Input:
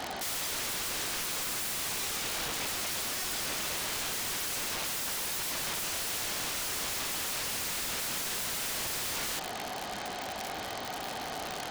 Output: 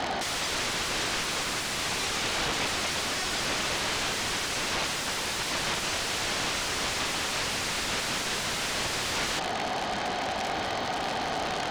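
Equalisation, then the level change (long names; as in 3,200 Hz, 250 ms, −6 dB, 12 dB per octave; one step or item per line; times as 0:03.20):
high-frequency loss of the air 90 metres
high-shelf EQ 10,000 Hz +5 dB
+8.0 dB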